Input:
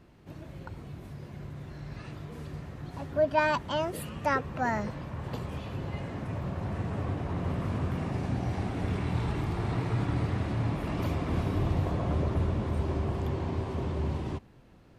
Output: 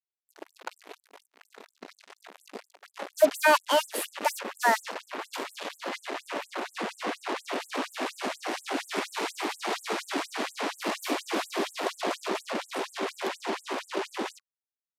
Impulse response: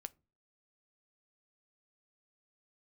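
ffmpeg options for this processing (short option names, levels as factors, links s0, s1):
-filter_complex "[0:a]highpass=f=45:p=1,bandreject=f=60:t=h:w=6,bandreject=f=120:t=h:w=6,bandreject=f=180:t=h:w=6,bandreject=f=240:t=h:w=6,bandreject=f=300:t=h:w=6,bandreject=f=360:t=h:w=6,bandreject=f=420:t=h:w=6,bandreject=f=480:t=h:w=6,bandreject=f=540:t=h:w=6,asettb=1/sr,asplit=3[s0][s1][s2];[s0]atrim=end=1.004[s3];[s1]atrim=start=1:end=3.15,asetpts=PTS-STARTPTS,afade=t=in:d=0.004:c=qsin,afade=t=out:st=2.146:d=0.004:c=qsin,flanger=delay=18.5:depth=2.5:speed=2.6[s4];[s2]atrim=start=3.146[s5];[s3][s4]acrossfade=d=0.004:c1=hsin:c2=qsin[s6];[s6][s5]acrossfade=d=0.004:c1=qsin:c2=hsin,acrusher=bits=5:mix=0:aa=0.5,aresample=32000,aresample=44100,afftfilt=real='re*gte(b*sr/1024,210*pow(7500/210,0.5+0.5*sin(2*PI*4.2*pts/sr)))':imag='im*gte(b*sr/1024,210*pow(7500/210,0.5+0.5*sin(2*PI*4.2*pts/sr)))':win_size=1024:overlap=0.75,volume=2.66"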